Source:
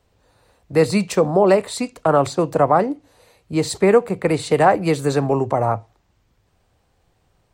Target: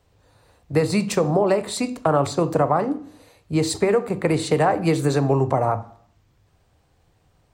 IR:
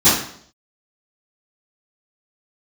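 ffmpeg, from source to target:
-filter_complex "[0:a]acompressor=threshold=-15dB:ratio=6,asplit=2[a][b];[1:a]atrim=start_sample=2205,lowshelf=f=120:g=11[c];[b][c]afir=irnorm=-1:irlink=0,volume=-35.5dB[d];[a][d]amix=inputs=2:normalize=0"

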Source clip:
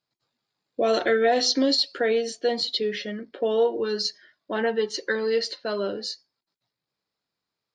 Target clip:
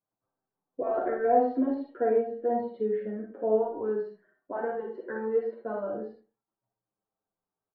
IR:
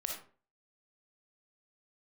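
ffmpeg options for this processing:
-filter_complex "[0:a]lowpass=f=1.2k:w=0.5412,lowpass=f=1.2k:w=1.3066[a];[1:a]atrim=start_sample=2205,asetrate=52920,aresample=44100[b];[a][b]afir=irnorm=-1:irlink=0,asplit=2[c][d];[d]adelay=7.2,afreqshift=-0.28[e];[c][e]amix=inputs=2:normalize=1,volume=1.5dB"

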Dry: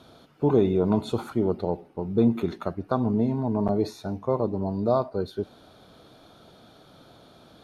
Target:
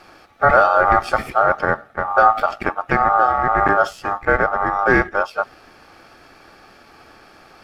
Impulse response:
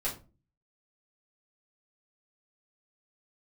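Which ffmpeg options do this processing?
-filter_complex "[0:a]asplit=2[a][b];[b]asetrate=58866,aresample=44100,atempo=0.749154,volume=-14dB[c];[a][c]amix=inputs=2:normalize=0,apsyclip=13.5dB,asplit=2[d][e];[e]aeval=exprs='sgn(val(0))*max(abs(val(0))-0.0447,0)':c=same,volume=-7dB[f];[d][f]amix=inputs=2:normalize=0,aeval=exprs='val(0)*sin(2*PI*1000*n/s)':c=same,lowshelf=f=140:g=6,volume=-5.5dB"

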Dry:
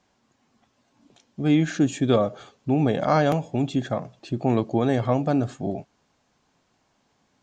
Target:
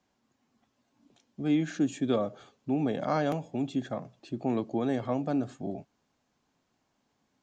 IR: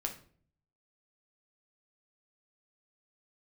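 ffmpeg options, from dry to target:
-filter_complex "[0:a]equalizer=f=260:w=1.7:g=3.5,acrossover=split=150[a][b];[a]alimiter=level_in=10.5dB:limit=-24dB:level=0:latency=1,volume=-10.5dB[c];[c][b]amix=inputs=2:normalize=0,volume=-8.5dB"

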